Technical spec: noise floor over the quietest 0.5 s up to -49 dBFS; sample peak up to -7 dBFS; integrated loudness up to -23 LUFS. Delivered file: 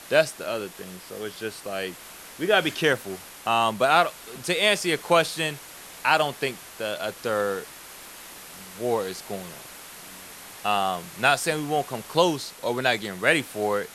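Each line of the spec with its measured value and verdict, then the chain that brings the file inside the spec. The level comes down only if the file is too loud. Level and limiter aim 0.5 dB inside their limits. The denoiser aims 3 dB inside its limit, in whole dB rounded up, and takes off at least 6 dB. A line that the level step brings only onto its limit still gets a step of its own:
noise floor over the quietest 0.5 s -43 dBFS: fail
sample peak -4.5 dBFS: fail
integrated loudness -25.0 LUFS: pass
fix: noise reduction 9 dB, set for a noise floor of -43 dBFS; peak limiter -7.5 dBFS

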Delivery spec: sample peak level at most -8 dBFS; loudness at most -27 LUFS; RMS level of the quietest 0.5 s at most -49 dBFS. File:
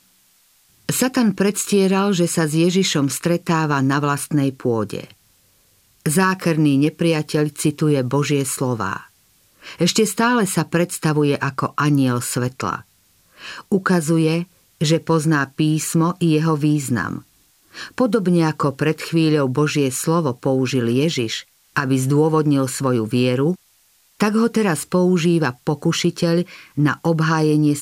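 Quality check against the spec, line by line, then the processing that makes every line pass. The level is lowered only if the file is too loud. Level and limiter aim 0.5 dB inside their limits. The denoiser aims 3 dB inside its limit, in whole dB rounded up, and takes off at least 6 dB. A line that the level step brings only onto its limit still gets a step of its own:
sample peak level -5.5 dBFS: fail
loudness -19.0 LUFS: fail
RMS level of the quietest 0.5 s -57 dBFS: pass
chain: trim -8.5 dB

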